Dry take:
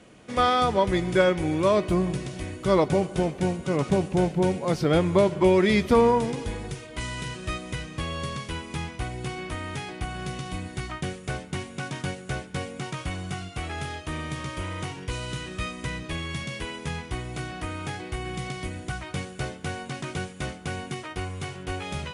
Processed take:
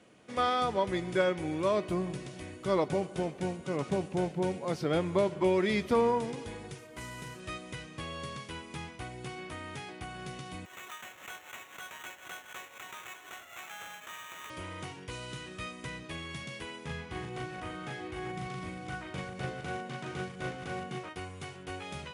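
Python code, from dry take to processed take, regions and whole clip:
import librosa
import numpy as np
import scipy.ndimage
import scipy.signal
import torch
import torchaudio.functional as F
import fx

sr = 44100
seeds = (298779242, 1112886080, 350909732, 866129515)

y = fx.chain(x, sr, fx.cvsd(bps=64000),
    fx.peak_eq(hz=3500.0, db=-6.0, octaves=1.2), at=(6.78, 7.4))
y = fx.chain(y, sr, fx.highpass(hz=860.0, slope=24),
    fx.sample_hold(seeds[0], rate_hz=4800.0, jitter_pct=0),
    fx.pre_swell(db_per_s=100.0), at=(10.65, 14.5))
y = fx.chain(y, sr, fx.reverse_delay(ms=204, wet_db=-7.0),
    fx.high_shelf(hz=5600.0, db=-9.5),
    fx.doubler(ms=38.0, db=-2.0), at=(16.85, 21.09))
y = scipy.signal.sosfilt(scipy.signal.butter(2, 80.0, 'highpass', fs=sr, output='sos'), y)
y = fx.bass_treble(y, sr, bass_db=-3, treble_db=-1)
y = y * 10.0 ** (-7.0 / 20.0)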